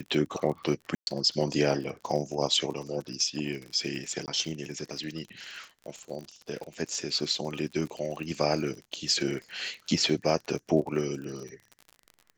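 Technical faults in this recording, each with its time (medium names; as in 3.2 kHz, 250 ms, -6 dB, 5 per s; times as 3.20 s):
crackle 47 per s -36 dBFS
0.95–1.07 s: dropout 121 ms
4.26–4.28 s: dropout 18 ms
8.96 s: dropout 3.6 ms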